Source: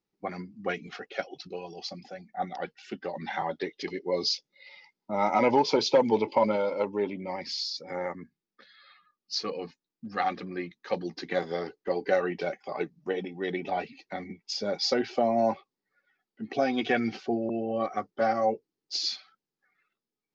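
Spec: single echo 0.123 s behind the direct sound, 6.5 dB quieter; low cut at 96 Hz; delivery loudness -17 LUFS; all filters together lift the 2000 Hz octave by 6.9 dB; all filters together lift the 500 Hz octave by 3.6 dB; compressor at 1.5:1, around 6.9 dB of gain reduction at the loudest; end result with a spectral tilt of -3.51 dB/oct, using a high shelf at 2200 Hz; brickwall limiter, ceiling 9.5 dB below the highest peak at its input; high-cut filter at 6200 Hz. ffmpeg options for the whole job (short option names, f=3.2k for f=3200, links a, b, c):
-af "highpass=96,lowpass=6.2k,equalizer=f=500:t=o:g=3.5,equalizer=f=2k:t=o:g=3.5,highshelf=f=2.2k:g=9,acompressor=threshold=-33dB:ratio=1.5,alimiter=limit=-22.5dB:level=0:latency=1,aecho=1:1:123:0.473,volume=16dB"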